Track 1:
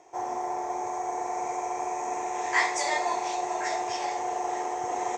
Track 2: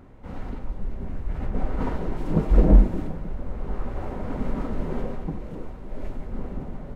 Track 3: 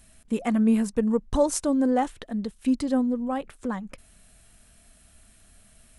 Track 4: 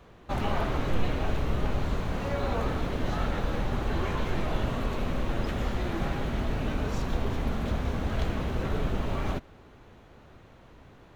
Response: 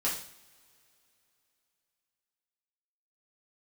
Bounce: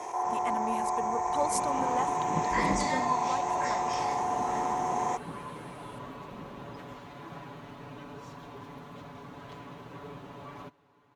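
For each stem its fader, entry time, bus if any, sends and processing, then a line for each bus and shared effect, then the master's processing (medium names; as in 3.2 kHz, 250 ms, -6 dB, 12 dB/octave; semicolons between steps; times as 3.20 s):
-12.0 dB, 0.00 s, send -13.5 dB, steep high-pass 320 Hz 48 dB/octave; level flattener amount 70%
-9.5 dB, 0.00 s, no send, none
-4.0 dB, 0.00 s, no send, high-pass 1.1 kHz 6 dB/octave
-15.0 dB, 1.30 s, no send, comb 7 ms, depth 90%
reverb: on, pre-delay 3 ms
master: high-pass 130 Hz 12 dB/octave; peaking EQ 1 kHz +9.5 dB 0.35 oct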